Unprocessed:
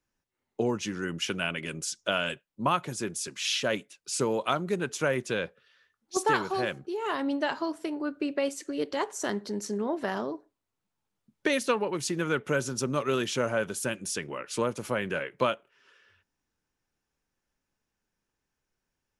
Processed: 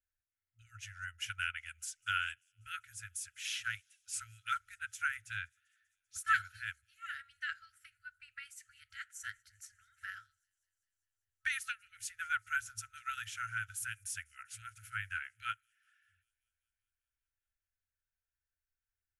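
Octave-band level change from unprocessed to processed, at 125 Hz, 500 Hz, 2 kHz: -17.0 dB, under -40 dB, -3.5 dB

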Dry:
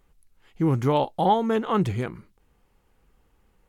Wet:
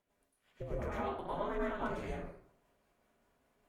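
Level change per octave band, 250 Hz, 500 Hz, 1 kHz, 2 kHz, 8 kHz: -17.5 dB, -13.0 dB, -16.0 dB, -6.5 dB, n/a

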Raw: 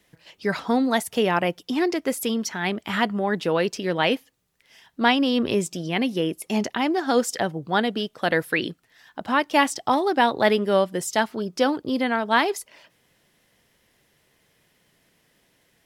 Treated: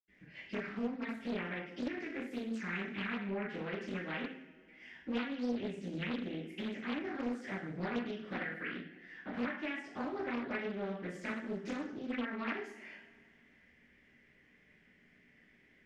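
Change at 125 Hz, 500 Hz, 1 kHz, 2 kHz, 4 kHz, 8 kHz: -12.5 dB, -18.0 dB, -21.5 dB, -14.5 dB, -20.5 dB, under -25 dB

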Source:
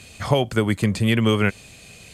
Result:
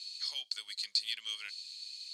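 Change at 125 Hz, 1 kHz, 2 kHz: under -40 dB, -33.0 dB, -19.5 dB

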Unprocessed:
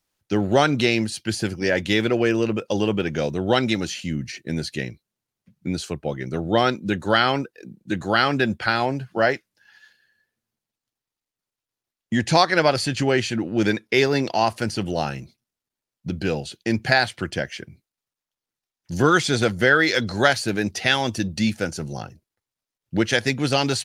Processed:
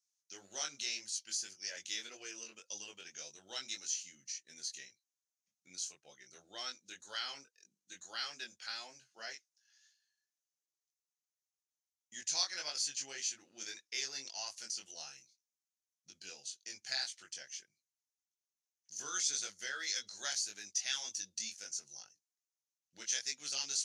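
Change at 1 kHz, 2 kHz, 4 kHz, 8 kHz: -28.5, -23.0, -12.5, -1.5 dB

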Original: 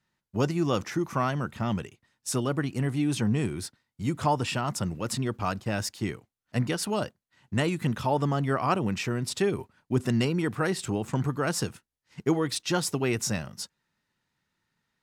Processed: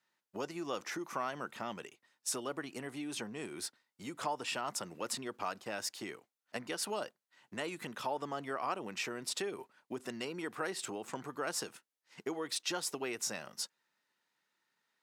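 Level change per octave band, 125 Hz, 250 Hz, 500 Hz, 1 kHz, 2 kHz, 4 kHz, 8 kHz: -25.0, -15.5, -10.5, -8.5, -7.5, -5.5, -5.0 dB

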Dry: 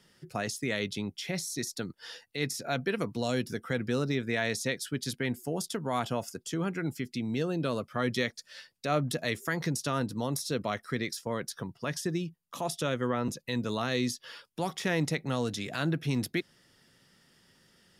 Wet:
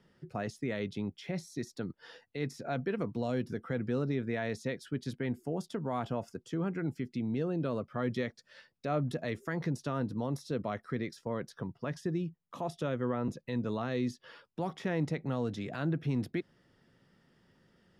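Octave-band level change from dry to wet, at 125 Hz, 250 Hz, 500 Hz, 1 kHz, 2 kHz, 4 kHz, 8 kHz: -1.5, -1.5, -2.5, -4.5, -8.0, -12.5, -16.5 dB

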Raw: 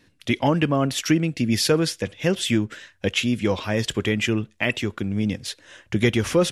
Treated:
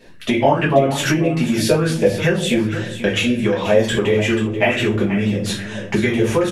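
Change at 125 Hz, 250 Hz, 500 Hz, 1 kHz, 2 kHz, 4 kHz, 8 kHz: +4.0, +4.5, +7.5, +7.5, +5.5, +2.0, +1.5 dB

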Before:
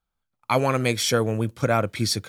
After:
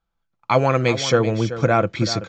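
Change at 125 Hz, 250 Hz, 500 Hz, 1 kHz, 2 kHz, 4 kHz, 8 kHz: +4.0, +3.5, +5.0, +4.0, +3.0, +0.5, -3.0 dB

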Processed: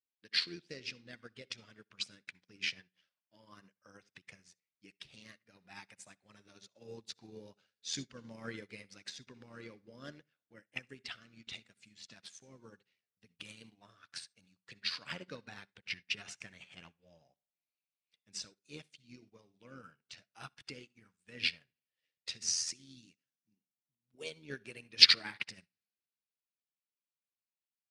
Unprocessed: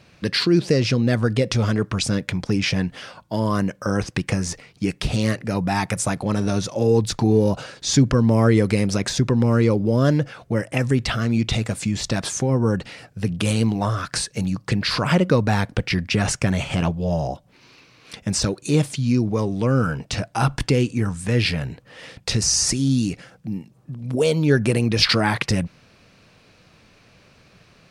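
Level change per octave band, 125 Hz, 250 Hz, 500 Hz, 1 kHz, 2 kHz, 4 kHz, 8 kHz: -38.0, -34.0, -31.0, -28.5, -14.5, -8.0, -17.0 dB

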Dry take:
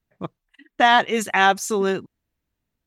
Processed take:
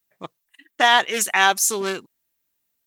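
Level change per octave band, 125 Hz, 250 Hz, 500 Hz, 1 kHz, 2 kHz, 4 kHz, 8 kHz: n/a, -7.0 dB, -4.0 dB, -1.5 dB, +1.0 dB, +4.0 dB, +10.0 dB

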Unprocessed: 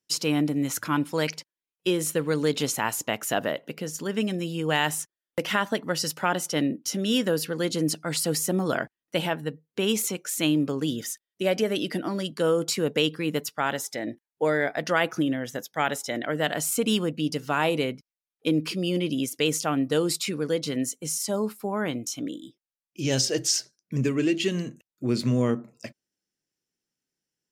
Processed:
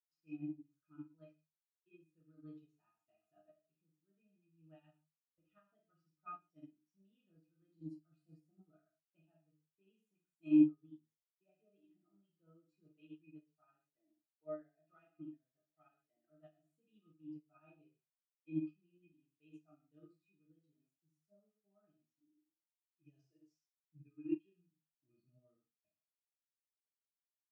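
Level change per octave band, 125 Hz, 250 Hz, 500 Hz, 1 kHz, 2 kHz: -27.5 dB, -15.0 dB, -29.0 dB, -32.0 dB, under -35 dB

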